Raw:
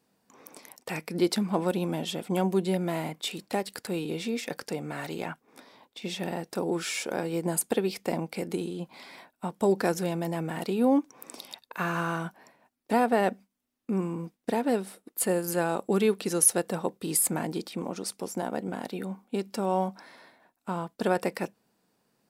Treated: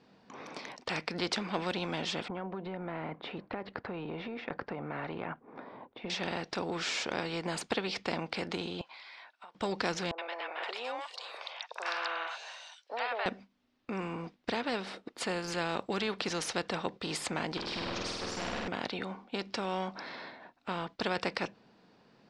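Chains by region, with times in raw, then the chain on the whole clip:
2.28–6.10 s: low-pass 1.2 kHz + compression 4:1, threshold -31 dBFS
8.81–9.55 s: high-pass 1.1 kHz + compression 10:1, threshold -56 dBFS
10.11–13.26 s: steep high-pass 540 Hz + three bands offset in time lows, mids, highs 70/520 ms, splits 750/3800 Hz
17.57–18.68 s: hard clipper -35 dBFS + flutter echo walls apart 8.5 m, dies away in 1.1 s
whole clip: low-pass 4.7 kHz 24 dB/octave; spectrum-flattening compressor 2:1; trim -3 dB

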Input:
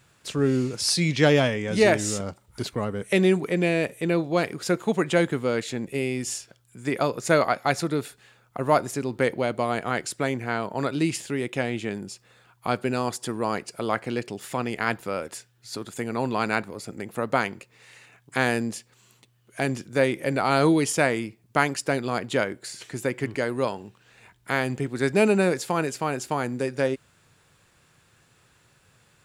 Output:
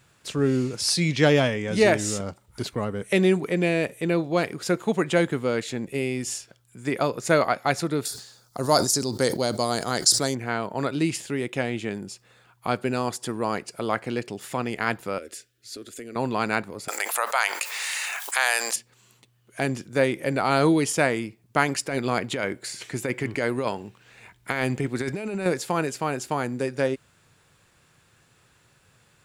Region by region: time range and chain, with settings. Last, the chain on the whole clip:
8.05–10.35 s: resonant high shelf 3.5 kHz +11 dB, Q 3 + decay stretcher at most 100 dB/s
15.18–16.16 s: compression 2.5:1, threshold -33 dBFS + static phaser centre 370 Hz, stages 4
16.88–18.76 s: high-pass 720 Hz 24 dB/octave + treble shelf 5.1 kHz +10 dB + level flattener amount 70%
21.68–25.46 s: peaking EQ 2.2 kHz +4 dB 0.29 oct + compressor with a negative ratio -26 dBFS
whole clip: none

